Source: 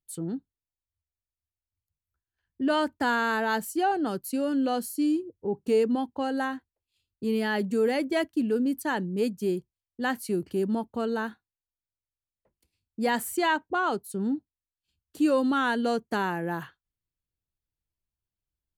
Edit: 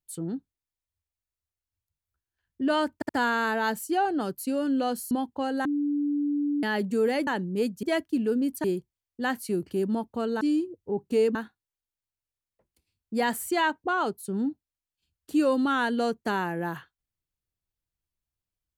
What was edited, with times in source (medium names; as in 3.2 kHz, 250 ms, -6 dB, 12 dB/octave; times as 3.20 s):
2.95 s: stutter 0.07 s, 3 plays
4.97–5.91 s: move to 11.21 s
6.45–7.43 s: bleep 290 Hz -23.5 dBFS
8.88–9.44 s: move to 8.07 s